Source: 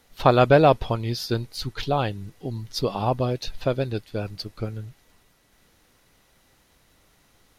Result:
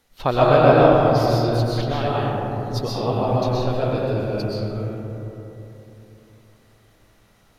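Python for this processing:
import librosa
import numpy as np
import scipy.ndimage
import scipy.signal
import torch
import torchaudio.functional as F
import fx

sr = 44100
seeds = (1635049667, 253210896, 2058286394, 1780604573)

y = fx.rev_freeverb(x, sr, rt60_s=3.3, hf_ratio=0.3, predelay_ms=85, drr_db=-7.0)
y = y * 10.0 ** (-4.5 / 20.0)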